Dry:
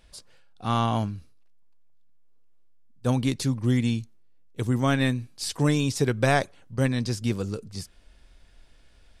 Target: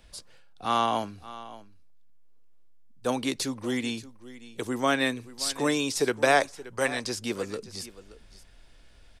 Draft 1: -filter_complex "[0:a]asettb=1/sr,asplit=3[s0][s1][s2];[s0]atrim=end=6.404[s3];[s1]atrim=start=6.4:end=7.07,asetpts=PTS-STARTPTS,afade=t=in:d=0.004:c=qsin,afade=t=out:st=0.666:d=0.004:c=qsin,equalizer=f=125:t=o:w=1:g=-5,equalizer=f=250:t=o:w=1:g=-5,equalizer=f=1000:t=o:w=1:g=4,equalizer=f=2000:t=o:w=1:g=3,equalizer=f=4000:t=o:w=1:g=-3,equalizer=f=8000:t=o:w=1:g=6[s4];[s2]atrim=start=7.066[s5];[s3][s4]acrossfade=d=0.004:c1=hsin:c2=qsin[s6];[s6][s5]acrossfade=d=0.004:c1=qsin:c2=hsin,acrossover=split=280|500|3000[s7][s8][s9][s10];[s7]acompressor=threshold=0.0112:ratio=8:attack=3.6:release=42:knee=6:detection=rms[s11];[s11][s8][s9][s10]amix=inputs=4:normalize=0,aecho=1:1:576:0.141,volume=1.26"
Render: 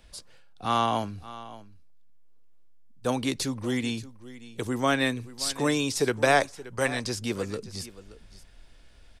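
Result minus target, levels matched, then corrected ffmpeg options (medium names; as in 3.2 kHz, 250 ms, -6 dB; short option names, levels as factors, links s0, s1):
compression: peak gain reduction -8.5 dB
-filter_complex "[0:a]asettb=1/sr,asplit=3[s0][s1][s2];[s0]atrim=end=6.404[s3];[s1]atrim=start=6.4:end=7.07,asetpts=PTS-STARTPTS,afade=t=in:d=0.004:c=qsin,afade=t=out:st=0.666:d=0.004:c=qsin,equalizer=f=125:t=o:w=1:g=-5,equalizer=f=250:t=o:w=1:g=-5,equalizer=f=1000:t=o:w=1:g=4,equalizer=f=2000:t=o:w=1:g=3,equalizer=f=4000:t=o:w=1:g=-3,equalizer=f=8000:t=o:w=1:g=6[s4];[s2]atrim=start=7.066[s5];[s3][s4]acrossfade=d=0.004:c1=hsin:c2=qsin[s6];[s6][s5]acrossfade=d=0.004:c1=qsin:c2=hsin,acrossover=split=280|500|3000[s7][s8][s9][s10];[s7]acompressor=threshold=0.00355:ratio=8:attack=3.6:release=42:knee=6:detection=rms[s11];[s11][s8][s9][s10]amix=inputs=4:normalize=0,aecho=1:1:576:0.141,volume=1.26"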